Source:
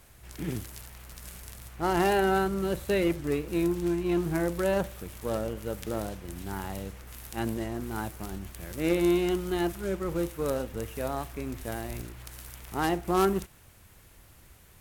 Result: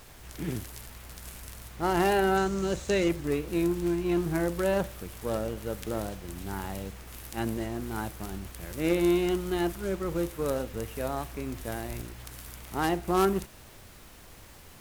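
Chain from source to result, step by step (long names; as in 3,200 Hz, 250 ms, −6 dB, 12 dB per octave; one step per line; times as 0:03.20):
0:02.37–0:03.09: low-pass with resonance 6,700 Hz, resonance Q 3.2
background noise pink −52 dBFS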